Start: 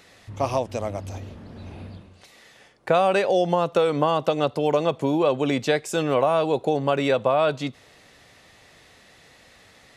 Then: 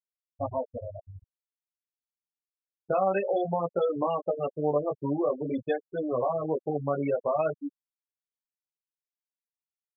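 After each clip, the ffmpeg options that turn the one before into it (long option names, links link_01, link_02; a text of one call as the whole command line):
ffmpeg -i in.wav -af "aeval=exprs='val(0)*gte(abs(val(0)),0.0224)':channel_layout=same,flanger=delay=16.5:depth=4.5:speed=0.5,afftfilt=real='re*gte(hypot(re,im),0.126)':imag='im*gte(hypot(re,im),0.126)':win_size=1024:overlap=0.75,volume=-3.5dB" out.wav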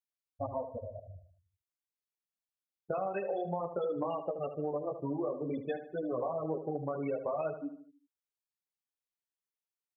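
ffmpeg -i in.wav -filter_complex "[0:a]acompressor=threshold=-27dB:ratio=6,asplit=2[link_01][link_02];[link_02]adelay=76,lowpass=frequency=2300:poles=1,volume=-9.5dB,asplit=2[link_03][link_04];[link_04]adelay=76,lowpass=frequency=2300:poles=1,volume=0.48,asplit=2[link_05][link_06];[link_06]adelay=76,lowpass=frequency=2300:poles=1,volume=0.48,asplit=2[link_07][link_08];[link_08]adelay=76,lowpass=frequency=2300:poles=1,volume=0.48,asplit=2[link_09][link_10];[link_10]adelay=76,lowpass=frequency=2300:poles=1,volume=0.48[link_11];[link_03][link_05][link_07][link_09][link_11]amix=inputs=5:normalize=0[link_12];[link_01][link_12]amix=inputs=2:normalize=0,volume=-4dB" out.wav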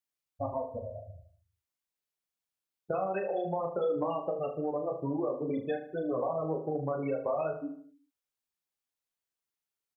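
ffmpeg -i in.wav -filter_complex "[0:a]asplit=2[link_01][link_02];[link_02]adelay=37,volume=-7dB[link_03];[link_01][link_03]amix=inputs=2:normalize=0,volume=2dB" out.wav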